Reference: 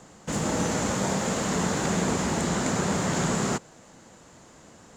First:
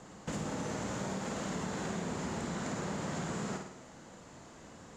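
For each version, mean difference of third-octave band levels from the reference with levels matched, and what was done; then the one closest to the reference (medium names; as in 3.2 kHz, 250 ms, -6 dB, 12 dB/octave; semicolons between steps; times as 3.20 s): 4.5 dB: treble shelf 8.2 kHz -9.5 dB; flutter echo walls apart 9 m, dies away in 0.49 s; compression 4:1, threshold -34 dBFS, peak gain reduction 12 dB; trim -2 dB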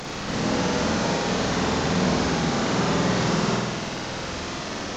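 8.5 dB: one-bit delta coder 32 kbps, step -27.5 dBFS; crackle 11 per s -40 dBFS; flutter echo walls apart 8.4 m, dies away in 1.1 s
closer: first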